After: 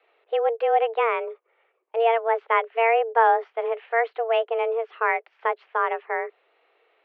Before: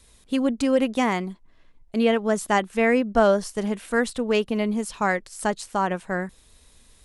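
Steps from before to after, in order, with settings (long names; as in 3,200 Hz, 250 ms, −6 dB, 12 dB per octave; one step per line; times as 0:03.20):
single-sideband voice off tune +230 Hz 160–2,600 Hz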